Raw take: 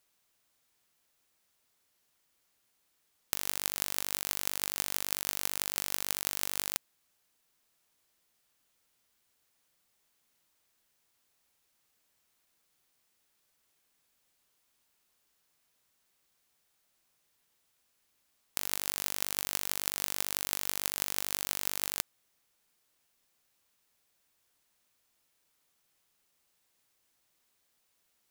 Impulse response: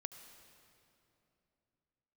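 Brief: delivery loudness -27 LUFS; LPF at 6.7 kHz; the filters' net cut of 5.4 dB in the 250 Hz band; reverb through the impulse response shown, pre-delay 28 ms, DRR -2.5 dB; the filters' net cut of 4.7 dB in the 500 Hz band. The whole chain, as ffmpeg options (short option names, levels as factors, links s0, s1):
-filter_complex "[0:a]lowpass=6700,equalizer=f=250:t=o:g=-6,equalizer=f=500:t=o:g=-4.5,asplit=2[s0][s1];[1:a]atrim=start_sample=2205,adelay=28[s2];[s1][s2]afir=irnorm=-1:irlink=0,volume=2[s3];[s0][s3]amix=inputs=2:normalize=0,volume=2.24"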